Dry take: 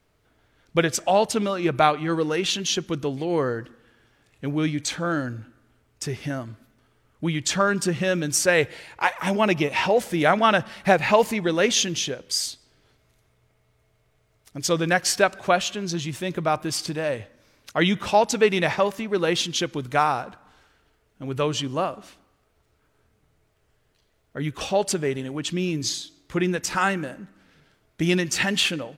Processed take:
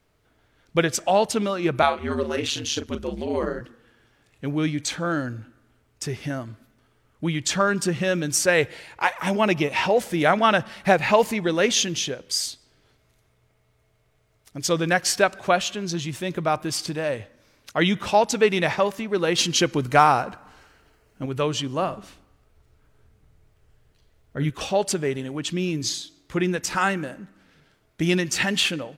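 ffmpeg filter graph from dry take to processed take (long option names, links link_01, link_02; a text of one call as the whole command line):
ffmpeg -i in.wav -filter_complex "[0:a]asettb=1/sr,asplit=3[link_01][link_02][link_03];[link_01]atrim=end=1.824[link_04];[link_02]atrim=start=1.82:end=3.61,asetpts=PTS-STARTPTS,afade=type=in:duration=0.004:curve=qsin,afade=type=out:start_time=1.786:duration=0.004:curve=qsin,asplit=2[link_05][link_06];[link_06]adelay=37,volume=-8dB[link_07];[link_05][link_07]amix=inputs=2:normalize=0,atrim=end_sample=78939,aeval=exprs='val(0)*sin(2*PI*74*n/s)':channel_layout=same[link_08];[link_03]atrim=start=3.606[link_09];[link_04][link_08]acrossfade=duration=0.004:curve1=hsin:curve2=qsin[link_10];[link_10][link_09]acrossfade=duration=0.004:curve1=qsin:curve2=hsin,asettb=1/sr,asplit=3[link_11][link_12][link_13];[link_11]atrim=end=19.384[link_14];[link_12]atrim=start=19.38:end=21.26,asetpts=PTS-STARTPTS,afade=type=in:duration=0.004:curve=qsin,afade=type=out:start_time=1.876:duration=0.004:curve=qsin,bandreject=frequency=3500:width=7.5,acontrast=42[link_15];[link_13]atrim=start=21.256[link_16];[link_14][link_15]acrossfade=duration=0.004:curve1=hsin:curve2=qsin[link_17];[link_17][link_16]acrossfade=duration=0.004:curve1=qsin:curve2=hsin,asettb=1/sr,asplit=3[link_18][link_19][link_20];[link_18]atrim=end=21.824[link_21];[link_19]atrim=start=21.82:end=24.5,asetpts=PTS-STARTPTS,afade=type=in:duration=0.004:curve=qsin,afade=type=out:start_time=2.676:duration=0.004:curve=qsin,lowshelf=frequency=130:gain=11.5,asplit=2[link_22][link_23];[link_23]adelay=50,volume=-13dB[link_24];[link_22][link_24]amix=inputs=2:normalize=0,atrim=end_sample=118188[link_25];[link_20]atrim=start=24.496[link_26];[link_21][link_25]acrossfade=duration=0.004:curve1=hsin:curve2=qsin[link_27];[link_27][link_26]acrossfade=duration=0.004:curve1=qsin:curve2=hsin" out.wav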